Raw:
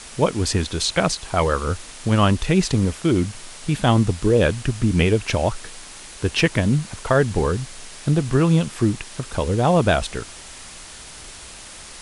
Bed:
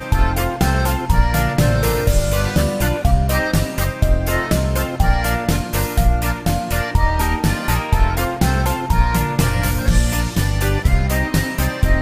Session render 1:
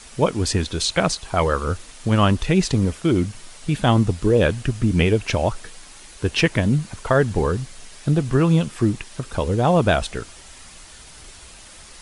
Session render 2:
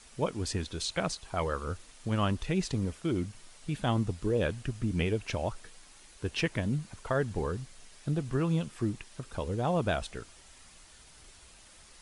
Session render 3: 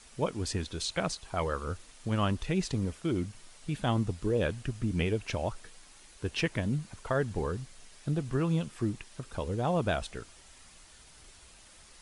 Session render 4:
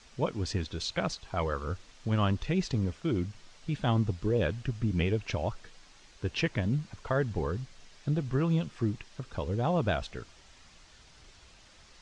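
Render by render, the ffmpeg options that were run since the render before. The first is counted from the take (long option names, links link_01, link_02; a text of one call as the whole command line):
ffmpeg -i in.wav -af "afftdn=noise_reduction=6:noise_floor=-40" out.wav
ffmpeg -i in.wav -af "volume=-12dB" out.wav
ffmpeg -i in.wav -af anull out.wav
ffmpeg -i in.wav -af "lowpass=frequency=6400:width=0.5412,lowpass=frequency=6400:width=1.3066,equalizer=frequency=110:width=1.3:gain=3" out.wav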